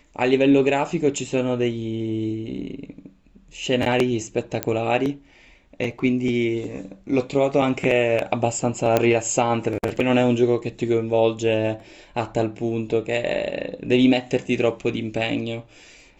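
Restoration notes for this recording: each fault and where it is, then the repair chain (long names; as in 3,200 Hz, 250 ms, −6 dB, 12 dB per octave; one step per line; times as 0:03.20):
0:04.63: click −6 dBFS
0:08.97: click −5 dBFS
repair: click removal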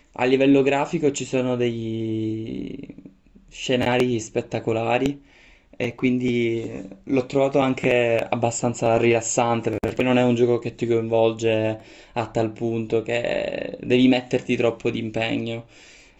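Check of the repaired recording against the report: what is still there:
none of them is left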